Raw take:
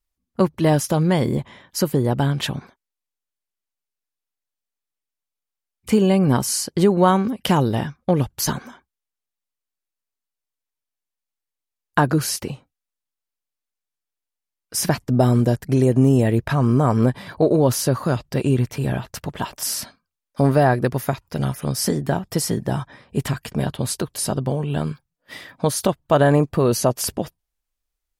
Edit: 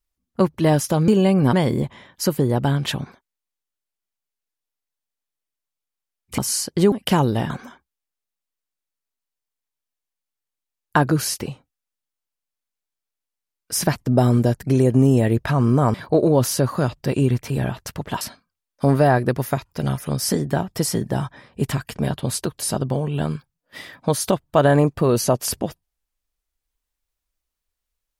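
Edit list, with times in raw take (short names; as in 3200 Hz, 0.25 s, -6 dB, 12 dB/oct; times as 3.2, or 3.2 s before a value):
5.93–6.38 move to 1.08
6.92–7.3 cut
7.88–8.52 cut
16.96–17.22 cut
19.49–19.77 cut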